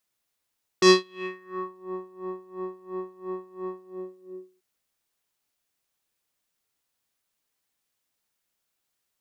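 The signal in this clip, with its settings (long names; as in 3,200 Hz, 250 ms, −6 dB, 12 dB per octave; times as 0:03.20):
subtractive patch with tremolo F#4, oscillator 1 square, interval 0 semitones, oscillator 2 level −16 dB, sub −12.5 dB, filter lowpass, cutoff 370 Hz, Q 3, filter envelope 4 octaves, filter decay 0.96 s, filter sustain 30%, attack 4.6 ms, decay 0.21 s, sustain −22 dB, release 0.88 s, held 2.91 s, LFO 2.9 Hz, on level 21 dB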